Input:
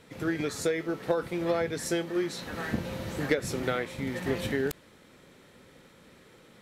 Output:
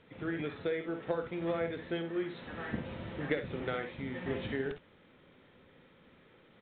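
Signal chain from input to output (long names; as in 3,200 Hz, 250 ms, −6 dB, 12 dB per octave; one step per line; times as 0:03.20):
ambience of single reflections 54 ms −11 dB, 66 ms −11 dB
level −6.5 dB
mu-law 64 kbit/s 8,000 Hz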